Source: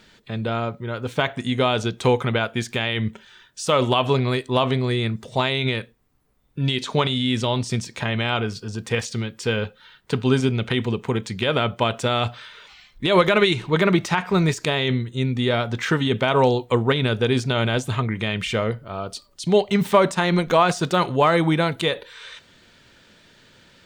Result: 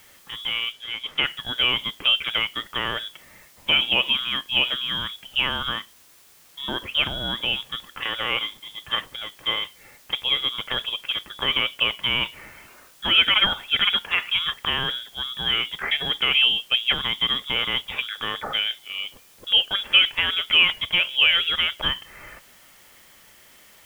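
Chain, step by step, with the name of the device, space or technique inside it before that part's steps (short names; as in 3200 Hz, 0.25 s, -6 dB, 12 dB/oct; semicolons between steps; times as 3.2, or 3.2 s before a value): scrambled radio voice (BPF 350–3100 Hz; inverted band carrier 3600 Hz; white noise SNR 28 dB); 0.72–1.24 high shelf 11000 Hz -10.5 dB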